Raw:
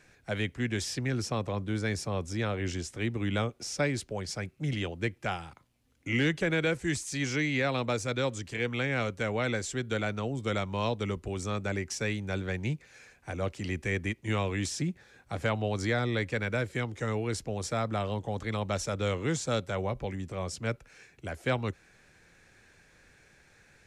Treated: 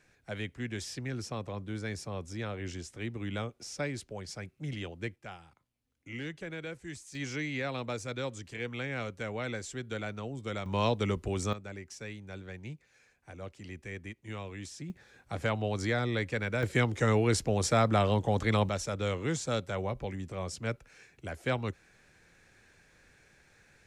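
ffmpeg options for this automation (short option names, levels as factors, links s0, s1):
-af "asetnsamples=n=441:p=0,asendcmd='5.16 volume volume -12.5dB;7.15 volume volume -6dB;10.66 volume volume 2dB;11.53 volume volume -11dB;14.9 volume volume -1.5dB;16.63 volume volume 5.5dB;18.69 volume volume -2dB',volume=0.501"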